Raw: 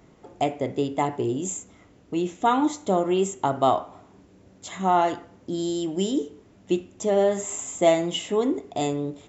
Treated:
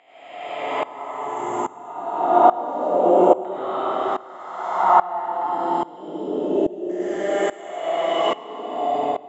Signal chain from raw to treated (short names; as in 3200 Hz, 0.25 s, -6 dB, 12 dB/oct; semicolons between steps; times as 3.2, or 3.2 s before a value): spectral swells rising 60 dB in 2.87 s; 1.09–2.21 dispersion lows, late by 56 ms, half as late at 1100 Hz; LFO band-pass saw down 0.29 Hz 410–1800 Hz; digital reverb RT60 3 s, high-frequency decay 0.85×, pre-delay 55 ms, DRR -9 dB; dB-ramp tremolo swelling 1.2 Hz, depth 20 dB; gain +3 dB